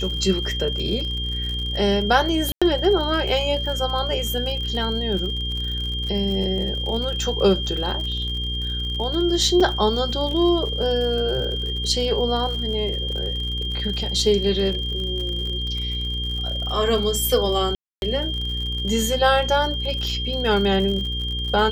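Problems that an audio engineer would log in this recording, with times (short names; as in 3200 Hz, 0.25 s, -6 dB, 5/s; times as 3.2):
crackle 65/s -29 dBFS
hum 60 Hz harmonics 8 -28 dBFS
tone 3200 Hz -27 dBFS
2.52–2.62 gap 96 ms
9.6 gap 4.5 ms
17.75–18.02 gap 0.271 s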